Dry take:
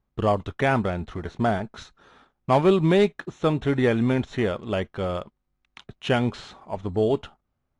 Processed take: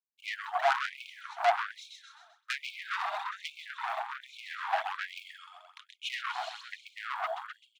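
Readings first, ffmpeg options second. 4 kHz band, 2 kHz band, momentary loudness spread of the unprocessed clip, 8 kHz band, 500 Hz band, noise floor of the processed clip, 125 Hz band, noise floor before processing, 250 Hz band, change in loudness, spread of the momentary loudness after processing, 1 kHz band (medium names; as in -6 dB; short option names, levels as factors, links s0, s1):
-3.5 dB, -2.5 dB, 14 LU, no reading, -16.0 dB, -71 dBFS, under -40 dB, -77 dBFS, under -40 dB, -10.5 dB, 20 LU, -3.0 dB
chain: -filter_complex "[0:a]asplit=2[s0][s1];[s1]aecho=0:1:130|260|390|520|650|780|910:0.631|0.334|0.177|0.0939|0.0498|0.0264|0.014[s2];[s0][s2]amix=inputs=2:normalize=0,adynamicequalizer=threshold=0.00708:dfrequency=3800:dqfactor=1.6:tfrequency=3800:tqfactor=1.6:attack=5:release=100:ratio=0.375:range=2:mode=boostabove:tftype=bell,dynaudnorm=f=560:g=3:m=3.76,agate=range=0.0224:threshold=0.00891:ratio=3:detection=peak,afwtdn=0.141,highpass=46,aphaser=in_gain=1:out_gain=1:delay=3.7:decay=0.55:speed=1.2:type=sinusoidal,acompressor=threshold=0.178:ratio=6,asoftclip=type=tanh:threshold=0.0794,afftfilt=real='re*gte(b*sr/1024,620*pow(2200/620,0.5+0.5*sin(2*PI*1.2*pts/sr)))':imag='im*gte(b*sr/1024,620*pow(2200/620,0.5+0.5*sin(2*PI*1.2*pts/sr)))':win_size=1024:overlap=0.75,volume=1.58"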